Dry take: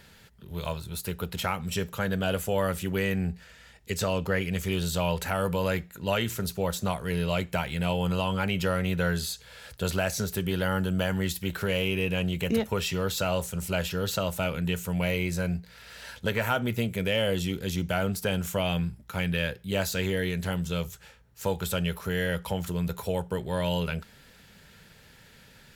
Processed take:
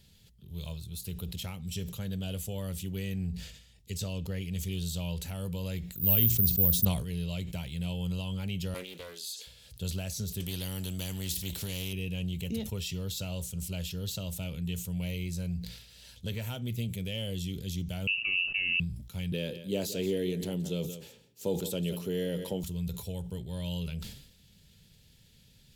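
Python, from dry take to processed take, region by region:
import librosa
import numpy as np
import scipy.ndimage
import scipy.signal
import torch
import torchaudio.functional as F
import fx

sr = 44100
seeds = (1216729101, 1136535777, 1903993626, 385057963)

y = fx.chain(x, sr, fx.low_shelf(hz=410.0, db=8.0),
    fx.resample_bad(factor=3, down='filtered', up='zero_stuff'), at=(5.93, 6.85))
y = fx.chain(y, sr, fx.highpass(hz=340.0, slope=24),
    fx.doppler_dist(depth_ms=0.25), at=(8.74, 9.47))
y = fx.chain(y, sr, fx.tilt_shelf(db=3.5, hz=680.0),
    fx.spectral_comp(ratio=2.0), at=(10.4, 11.93))
y = fx.chain(y, sr, fx.tilt_eq(slope=-3.5),
    fx.freq_invert(carrier_hz=2800), at=(18.07, 18.8))
y = fx.chain(y, sr, fx.highpass(hz=200.0, slope=12),
    fx.peak_eq(hz=370.0, db=14.0, octaves=2.0),
    fx.echo_single(ms=173, db=-14.0), at=(19.32, 22.64))
y = fx.curve_eq(y, sr, hz=(120.0, 1500.0, 3300.0), db=(0, -21, -3))
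y = fx.sustainer(y, sr, db_per_s=73.0)
y = y * librosa.db_to_amplitude(-2.5)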